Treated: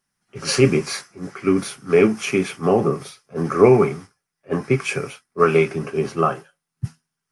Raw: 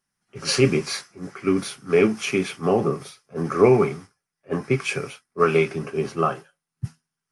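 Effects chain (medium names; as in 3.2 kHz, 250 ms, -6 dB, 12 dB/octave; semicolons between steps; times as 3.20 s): dynamic bell 3.8 kHz, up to -4 dB, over -42 dBFS, Q 1.3; trim +3 dB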